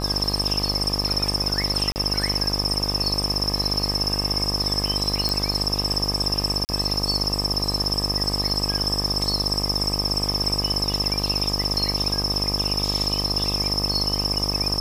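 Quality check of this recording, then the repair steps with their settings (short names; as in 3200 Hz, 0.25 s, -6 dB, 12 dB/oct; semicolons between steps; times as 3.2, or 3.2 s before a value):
buzz 50 Hz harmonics 25 -28 dBFS
1.92–1.96 gap 39 ms
5.29 pop
6.65–6.69 gap 39 ms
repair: de-click; de-hum 50 Hz, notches 25; interpolate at 1.92, 39 ms; interpolate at 6.65, 39 ms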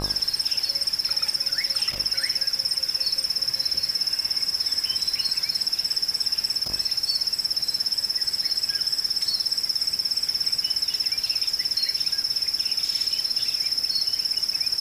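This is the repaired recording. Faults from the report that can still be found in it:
none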